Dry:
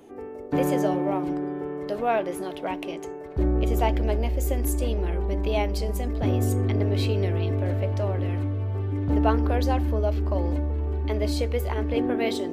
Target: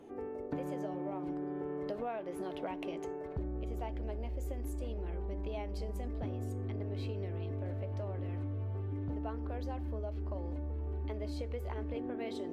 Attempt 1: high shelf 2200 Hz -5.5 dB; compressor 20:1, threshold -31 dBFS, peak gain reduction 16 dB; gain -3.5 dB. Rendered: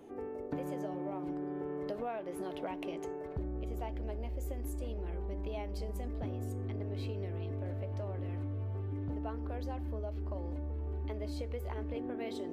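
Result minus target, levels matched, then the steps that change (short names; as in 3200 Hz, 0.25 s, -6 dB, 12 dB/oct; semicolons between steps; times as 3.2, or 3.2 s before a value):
8000 Hz band +2.5 dB
add after compressor: high shelf 11000 Hz -8 dB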